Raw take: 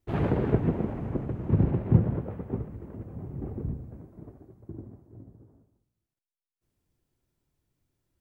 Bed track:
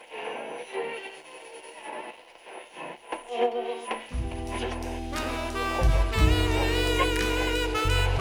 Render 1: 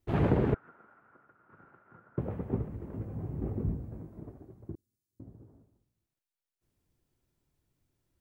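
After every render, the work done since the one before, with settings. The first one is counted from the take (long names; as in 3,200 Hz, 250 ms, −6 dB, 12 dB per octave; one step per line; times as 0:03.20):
0:00.54–0:02.18: resonant band-pass 1,400 Hz, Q 12
0:02.91–0:04.20: double-tracking delay 19 ms −5.5 dB
0:04.75–0:05.20: inverse Chebyshev high-pass filter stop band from 2,200 Hz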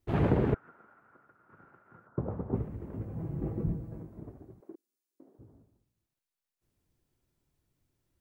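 0:02.07–0:02.55: high shelf with overshoot 1,700 Hz −11.5 dB, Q 1.5
0:03.16–0:04.03: comb filter 6.1 ms, depth 59%
0:04.60–0:05.39: high-pass filter 310 Hz 24 dB per octave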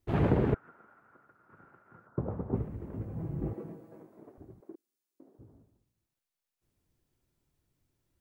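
0:03.53–0:04.38: high-pass filter 370 Hz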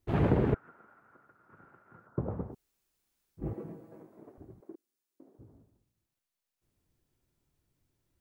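0:02.50–0:03.42: fill with room tone, crossfade 0.10 s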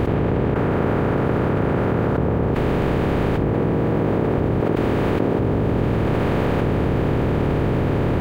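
compressor on every frequency bin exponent 0.2
envelope flattener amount 100%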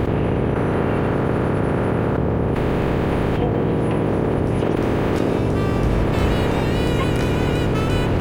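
mix in bed track −2.5 dB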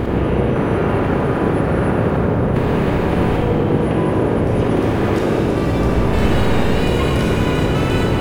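four-comb reverb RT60 1.8 s, combs from 31 ms, DRR −0.5 dB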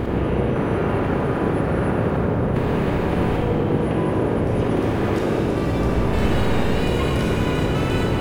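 level −4 dB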